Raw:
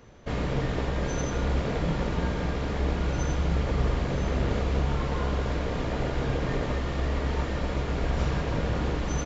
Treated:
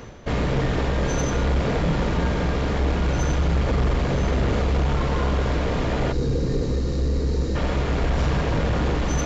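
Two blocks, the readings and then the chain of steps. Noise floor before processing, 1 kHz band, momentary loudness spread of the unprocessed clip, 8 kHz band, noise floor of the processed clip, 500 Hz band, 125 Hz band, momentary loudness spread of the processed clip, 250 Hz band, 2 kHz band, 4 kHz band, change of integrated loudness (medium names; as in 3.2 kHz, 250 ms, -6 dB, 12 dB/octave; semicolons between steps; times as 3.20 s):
-31 dBFS, +5.0 dB, 3 LU, no reading, -24 dBFS, +5.5 dB, +5.5 dB, 2 LU, +5.5 dB, +5.0 dB, +5.0 dB, +5.5 dB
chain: saturation -22 dBFS, distortion -16 dB; reverse; upward compressor, threshold -33 dBFS; reverse; time-frequency box 6.13–7.55 s, 550–3700 Hz -13 dB; trim +7.5 dB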